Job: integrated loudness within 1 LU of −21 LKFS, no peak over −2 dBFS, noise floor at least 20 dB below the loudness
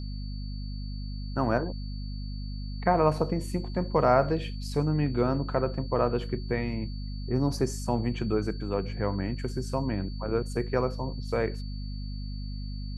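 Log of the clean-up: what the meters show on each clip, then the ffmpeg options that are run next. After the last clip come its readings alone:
mains hum 50 Hz; hum harmonics up to 250 Hz; level of the hum −32 dBFS; interfering tone 4,500 Hz; level of the tone −49 dBFS; integrated loudness −30.0 LKFS; sample peak −8.5 dBFS; target loudness −21.0 LKFS
→ -af "bandreject=frequency=50:width_type=h:width=4,bandreject=frequency=100:width_type=h:width=4,bandreject=frequency=150:width_type=h:width=4,bandreject=frequency=200:width_type=h:width=4,bandreject=frequency=250:width_type=h:width=4"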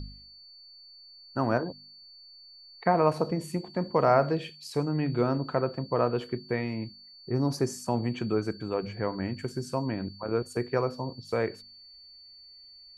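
mains hum none found; interfering tone 4,500 Hz; level of the tone −49 dBFS
→ -af "bandreject=frequency=4500:width=30"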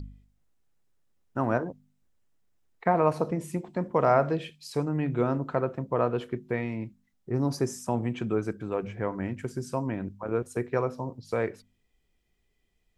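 interfering tone none found; integrated loudness −29.5 LKFS; sample peak −8.5 dBFS; target loudness −21.0 LKFS
→ -af "volume=8.5dB,alimiter=limit=-2dB:level=0:latency=1"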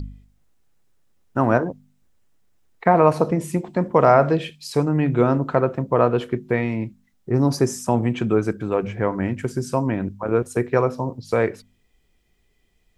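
integrated loudness −21.5 LKFS; sample peak −2.0 dBFS; background noise floor −64 dBFS

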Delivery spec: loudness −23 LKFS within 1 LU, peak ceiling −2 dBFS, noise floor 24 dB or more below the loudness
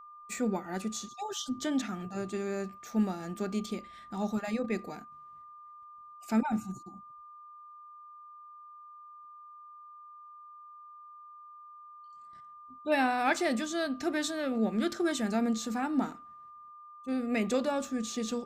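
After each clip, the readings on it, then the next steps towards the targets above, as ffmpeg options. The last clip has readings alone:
interfering tone 1,200 Hz; level of the tone −48 dBFS; integrated loudness −32.5 LKFS; sample peak −16.0 dBFS; target loudness −23.0 LKFS
→ -af "bandreject=frequency=1200:width=30"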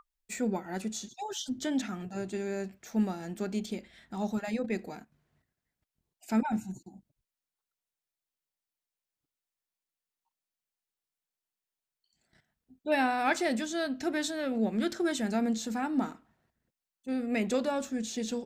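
interfering tone none found; integrated loudness −32.5 LKFS; sample peak −16.0 dBFS; target loudness −23.0 LKFS
→ -af "volume=9.5dB"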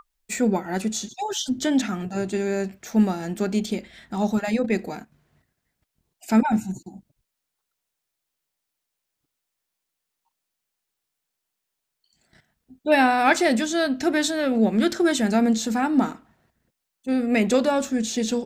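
integrated loudness −23.0 LKFS; sample peak −6.5 dBFS; background noise floor −82 dBFS

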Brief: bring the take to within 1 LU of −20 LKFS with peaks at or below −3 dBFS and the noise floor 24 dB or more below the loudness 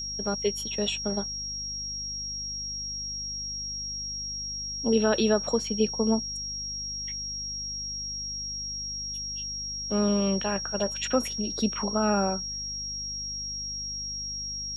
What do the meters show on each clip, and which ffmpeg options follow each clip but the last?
mains hum 50 Hz; hum harmonics up to 250 Hz; level of the hum −42 dBFS; interfering tone 5,600 Hz; level of the tone −32 dBFS; integrated loudness −29.0 LKFS; sample peak −11.5 dBFS; target loudness −20.0 LKFS
→ -af "bandreject=frequency=50:width_type=h:width=6,bandreject=frequency=100:width_type=h:width=6,bandreject=frequency=150:width_type=h:width=6,bandreject=frequency=200:width_type=h:width=6,bandreject=frequency=250:width_type=h:width=6"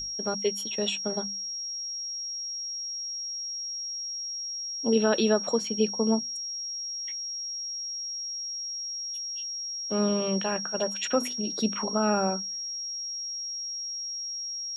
mains hum none found; interfering tone 5,600 Hz; level of the tone −32 dBFS
→ -af "bandreject=frequency=5600:width=30"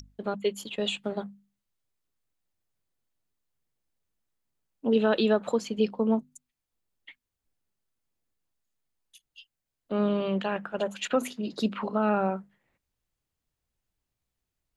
interfering tone none found; integrated loudness −28.5 LKFS; sample peak −12.0 dBFS; target loudness −20.0 LKFS
→ -af "volume=8.5dB"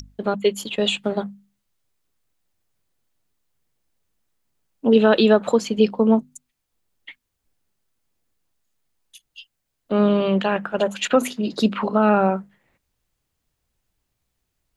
integrated loudness −20.0 LKFS; sample peak −3.5 dBFS; background noise floor −78 dBFS

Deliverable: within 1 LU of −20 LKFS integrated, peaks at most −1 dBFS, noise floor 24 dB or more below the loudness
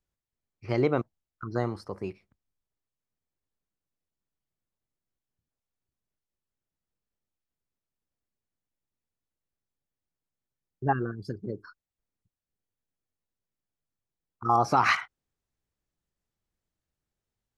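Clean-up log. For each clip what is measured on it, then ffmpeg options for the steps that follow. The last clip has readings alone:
integrated loudness −28.5 LKFS; sample peak −10.5 dBFS; target loudness −20.0 LKFS
→ -af "volume=8.5dB"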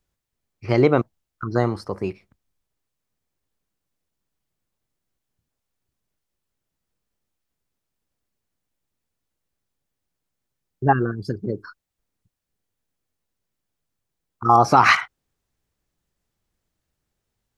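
integrated loudness −20.0 LKFS; sample peak −2.0 dBFS; background noise floor −82 dBFS

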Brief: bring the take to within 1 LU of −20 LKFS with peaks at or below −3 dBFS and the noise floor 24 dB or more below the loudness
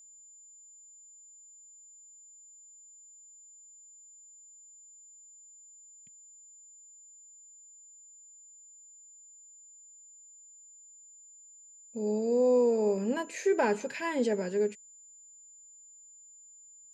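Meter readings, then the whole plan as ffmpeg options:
interfering tone 7,100 Hz; level of the tone −52 dBFS; integrated loudness −29.0 LKFS; sample peak −17.0 dBFS; target loudness −20.0 LKFS
→ -af "bandreject=frequency=7100:width=30"
-af "volume=9dB"

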